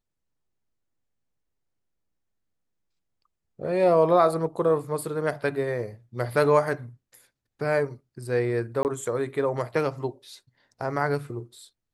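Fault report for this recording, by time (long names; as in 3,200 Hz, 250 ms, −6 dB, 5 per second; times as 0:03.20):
0:08.83–0:08.85: drop-out 19 ms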